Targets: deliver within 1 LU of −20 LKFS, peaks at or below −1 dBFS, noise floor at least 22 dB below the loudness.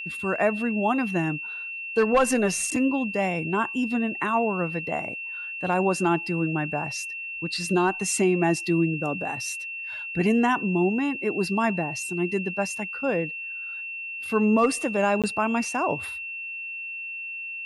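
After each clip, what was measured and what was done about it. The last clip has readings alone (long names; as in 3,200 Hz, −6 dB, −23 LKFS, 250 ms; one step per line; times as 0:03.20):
number of dropouts 1; longest dropout 17 ms; interfering tone 2,700 Hz; level of the tone −32 dBFS; integrated loudness −25.5 LKFS; sample peak −12.0 dBFS; target loudness −20.0 LKFS
→ repair the gap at 0:15.22, 17 ms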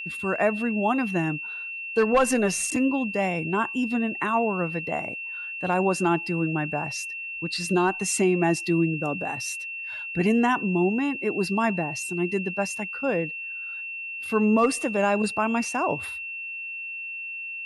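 number of dropouts 0; interfering tone 2,700 Hz; level of the tone −32 dBFS
→ notch filter 2,700 Hz, Q 30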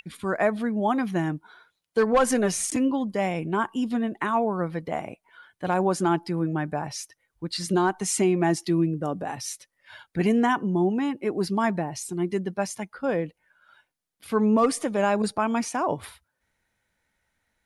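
interfering tone none found; integrated loudness −25.5 LKFS; sample peak −12.5 dBFS; target loudness −20.0 LKFS
→ level +5.5 dB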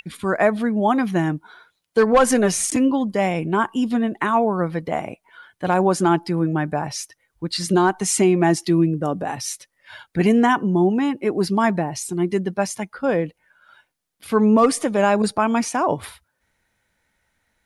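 integrated loudness −20.0 LKFS; sample peak −7.0 dBFS; background noise floor −74 dBFS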